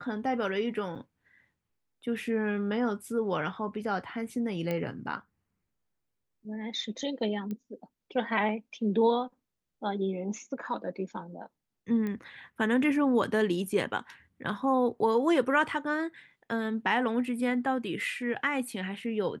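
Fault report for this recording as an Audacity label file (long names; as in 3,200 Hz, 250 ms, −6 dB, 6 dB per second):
0.950000	0.960000	drop-out 6.4 ms
4.710000	4.710000	click −19 dBFS
7.510000	7.510000	click −25 dBFS
12.070000	12.070000	click −23 dBFS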